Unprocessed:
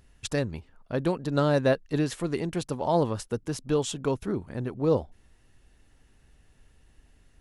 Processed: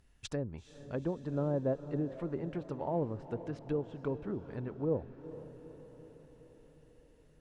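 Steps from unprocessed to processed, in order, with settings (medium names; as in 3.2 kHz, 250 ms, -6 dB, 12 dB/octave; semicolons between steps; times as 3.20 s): low-pass that closes with the level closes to 690 Hz, closed at -23 dBFS; echo that smears into a reverb 451 ms, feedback 60%, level -13.5 dB; trim -8 dB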